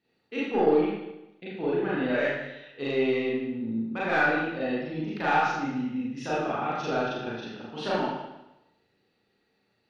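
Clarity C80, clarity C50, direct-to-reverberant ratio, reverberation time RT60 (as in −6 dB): 1.5 dB, −1.0 dB, −8.5 dB, 0.95 s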